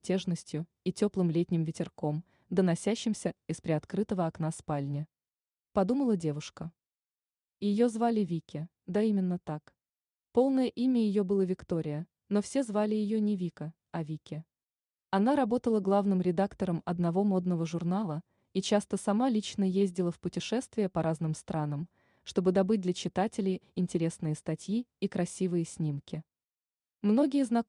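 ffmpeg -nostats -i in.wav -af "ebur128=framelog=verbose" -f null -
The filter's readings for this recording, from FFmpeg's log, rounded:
Integrated loudness:
  I:         -31.1 LUFS
  Threshold: -41.4 LUFS
Loudness range:
  LRA:         3.6 LU
  Threshold: -51.7 LUFS
  LRA low:   -33.6 LUFS
  LRA high:  -30.0 LUFS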